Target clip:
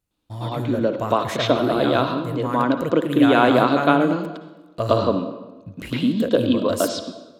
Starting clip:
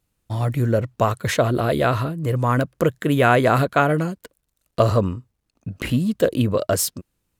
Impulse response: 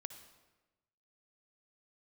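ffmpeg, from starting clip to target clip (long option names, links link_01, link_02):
-filter_complex "[0:a]asplit=2[link_01][link_02];[link_02]highpass=frequency=190:width=0.5412,highpass=frequency=190:width=1.3066,equalizer=frequency=290:width_type=q:width=4:gain=9,equalizer=frequency=950:width_type=q:width=4:gain=4,equalizer=frequency=1900:width_type=q:width=4:gain=-7,equalizer=frequency=3600:width_type=q:width=4:gain=9,lowpass=frequency=5100:width=0.5412,lowpass=frequency=5100:width=1.3066[link_03];[1:a]atrim=start_sample=2205,adelay=109[link_04];[link_03][link_04]afir=irnorm=-1:irlink=0,volume=11dB[link_05];[link_01][link_05]amix=inputs=2:normalize=0,volume=-8dB"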